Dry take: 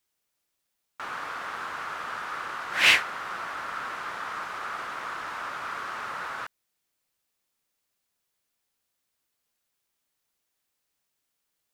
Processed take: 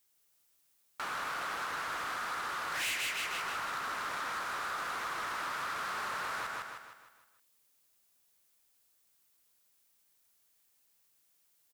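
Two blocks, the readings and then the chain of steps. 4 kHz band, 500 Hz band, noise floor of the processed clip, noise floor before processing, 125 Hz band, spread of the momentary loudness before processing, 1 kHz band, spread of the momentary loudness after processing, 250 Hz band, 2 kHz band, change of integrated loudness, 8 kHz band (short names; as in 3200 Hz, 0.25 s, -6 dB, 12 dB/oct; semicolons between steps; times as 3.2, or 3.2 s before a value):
-9.0 dB, -4.0 dB, -72 dBFS, -80 dBFS, -3.5 dB, 14 LU, -3.0 dB, 7 LU, -4.0 dB, -7.5 dB, -7.0 dB, -2.0 dB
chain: feedback echo 0.155 s, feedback 46%, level -4.5 dB; compressor 3:1, threshold -34 dBFS, peak gain reduction 15 dB; overloaded stage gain 33 dB; high shelf 6300 Hz +9 dB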